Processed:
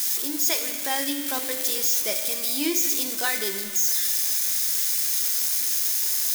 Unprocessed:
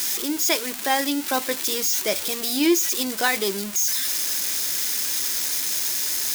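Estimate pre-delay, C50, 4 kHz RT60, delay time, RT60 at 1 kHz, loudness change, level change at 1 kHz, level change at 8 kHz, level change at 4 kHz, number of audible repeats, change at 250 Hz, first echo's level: 3 ms, 6.5 dB, 2.0 s, none, 2.1 s, 0.0 dB, -7.0 dB, -0.5 dB, -2.5 dB, none, -7.0 dB, none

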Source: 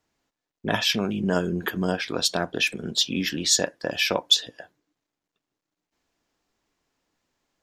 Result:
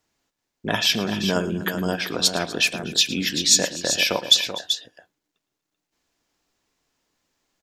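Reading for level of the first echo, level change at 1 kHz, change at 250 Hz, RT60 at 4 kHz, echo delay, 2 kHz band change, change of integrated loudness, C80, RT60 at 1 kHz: -17.0 dB, +1.0 dB, +0.5 dB, none, 0.11 s, +2.5 dB, +3.0 dB, none, none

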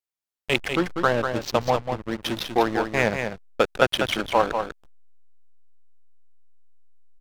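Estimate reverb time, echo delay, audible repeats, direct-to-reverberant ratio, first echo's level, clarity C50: none, 0.195 s, 1, none, -6.5 dB, none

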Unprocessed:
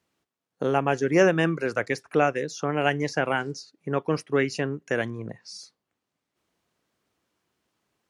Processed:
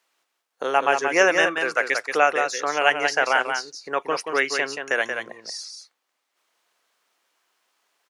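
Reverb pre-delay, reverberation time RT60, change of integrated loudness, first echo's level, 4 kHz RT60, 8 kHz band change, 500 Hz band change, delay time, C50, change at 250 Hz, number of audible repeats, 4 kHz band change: none, none, +3.5 dB, -6.0 dB, none, +8.5 dB, +1.0 dB, 0.18 s, none, -7.0 dB, 1, +8.5 dB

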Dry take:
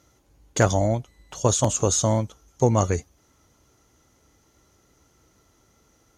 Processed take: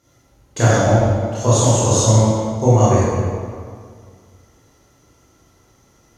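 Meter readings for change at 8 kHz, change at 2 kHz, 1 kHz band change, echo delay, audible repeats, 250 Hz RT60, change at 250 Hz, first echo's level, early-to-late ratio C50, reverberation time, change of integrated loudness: +4.5 dB, +7.5 dB, +7.5 dB, none, none, 2.1 s, +8.0 dB, none, -4.5 dB, 2.0 s, +7.5 dB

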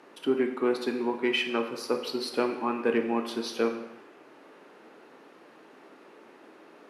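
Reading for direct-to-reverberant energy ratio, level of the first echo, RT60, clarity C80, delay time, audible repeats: 5.0 dB, none, 0.95 s, 10.5 dB, none, none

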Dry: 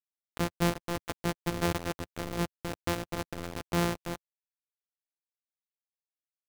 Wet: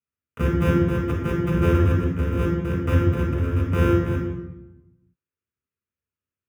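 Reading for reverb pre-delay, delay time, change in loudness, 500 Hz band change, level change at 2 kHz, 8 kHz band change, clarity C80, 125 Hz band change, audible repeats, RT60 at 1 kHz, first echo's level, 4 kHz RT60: 3 ms, none, +11.5 dB, +10.0 dB, +6.0 dB, n/a, 5.0 dB, +16.0 dB, none, 0.90 s, none, 0.75 s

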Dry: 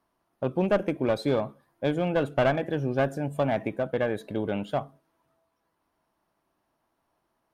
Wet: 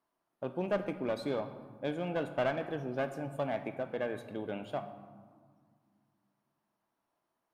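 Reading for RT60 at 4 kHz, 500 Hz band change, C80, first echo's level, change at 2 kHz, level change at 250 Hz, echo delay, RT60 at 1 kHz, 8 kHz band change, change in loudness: 0.85 s, -8.0 dB, 12.0 dB, none, -7.5 dB, -9.0 dB, none, 1.9 s, n/a, -8.5 dB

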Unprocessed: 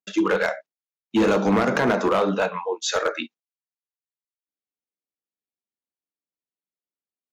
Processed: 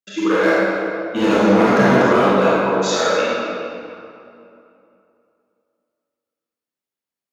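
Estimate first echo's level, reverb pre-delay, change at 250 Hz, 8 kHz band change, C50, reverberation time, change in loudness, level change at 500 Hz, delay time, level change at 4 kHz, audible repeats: none, 25 ms, +6.5 dB, +4.0 dB, -5.5 dB, 2.7 s, +6.0 dB, +7.0 dB, none, +5.5 dB, none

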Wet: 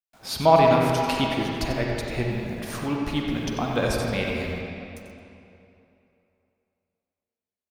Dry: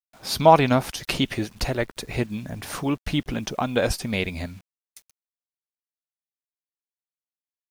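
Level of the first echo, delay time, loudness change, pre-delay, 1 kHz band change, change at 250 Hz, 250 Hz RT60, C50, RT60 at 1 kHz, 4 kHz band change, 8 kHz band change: -9.0 dB, 92 ms, -0.5 dB, 38 ms, -0.5 dB, -0.5 dB, 2.7 s, -1.5 dB, 2.9 s, -1.5 dB, -3.5 dB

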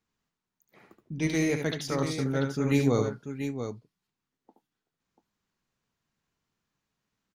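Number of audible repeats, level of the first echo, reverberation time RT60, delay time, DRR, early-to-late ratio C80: 2, -6.5 dB, none, 73 ms, none, none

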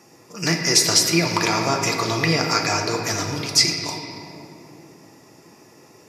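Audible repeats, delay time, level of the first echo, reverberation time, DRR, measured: none, none, none, 2.9 s, 1.5 dB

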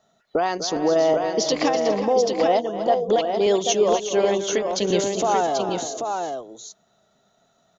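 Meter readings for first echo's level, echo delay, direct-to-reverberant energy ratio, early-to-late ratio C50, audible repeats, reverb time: -11.5 dB, 0.248 s, none, none, 4, none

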